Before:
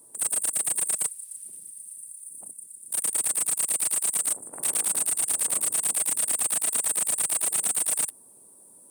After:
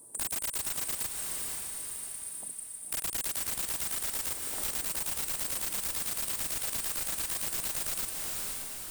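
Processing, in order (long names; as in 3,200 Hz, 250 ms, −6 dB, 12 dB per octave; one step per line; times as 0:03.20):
wrap-around overflow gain 22 dB
on a send: feedback delay with all-pass diffusion 488 ms, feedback 44%, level −7 dB
on the sum: downward compressor, threshold −31 dBFS, peak gain reduction 7.5 dB
low-shelf EQ 98 Hz +7 dB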